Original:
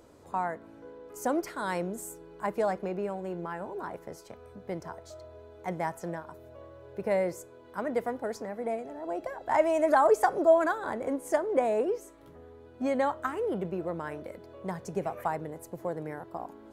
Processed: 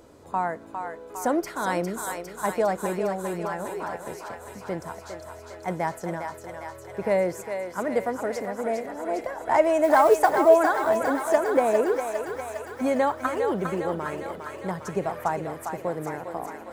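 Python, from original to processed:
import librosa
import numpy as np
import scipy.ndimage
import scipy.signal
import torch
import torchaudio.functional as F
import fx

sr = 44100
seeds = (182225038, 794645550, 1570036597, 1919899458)

y = fx.mod_noise(x, sr, seeds[0], snr_db=27, at=(9.83, 10.31))
y = fx.echo_thinned(y, sr, ms=405, feedback_pct=77, hz=630.0, wet_db=-5.0)
y = F.gain(torch.from_numpy(y), 4.5).numpy()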